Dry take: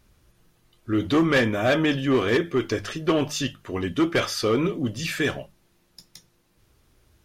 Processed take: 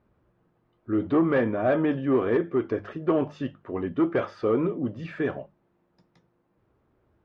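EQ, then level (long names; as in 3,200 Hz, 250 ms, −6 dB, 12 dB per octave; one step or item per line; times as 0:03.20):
high-pass filter 190 Hz 6 dB per octave
low-pass filter 1,100 Hz 12 dB per octave
0.0 dB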